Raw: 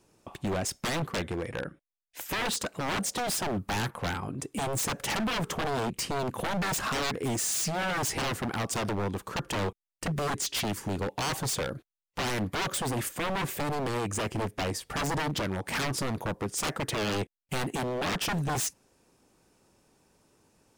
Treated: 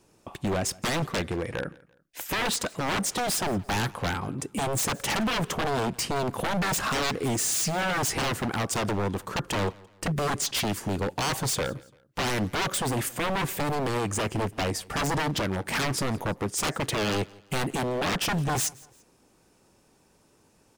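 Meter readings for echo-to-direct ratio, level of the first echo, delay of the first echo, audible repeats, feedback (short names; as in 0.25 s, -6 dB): -23.0 dB, -23.5 dB, 0.17 s, 2, 38%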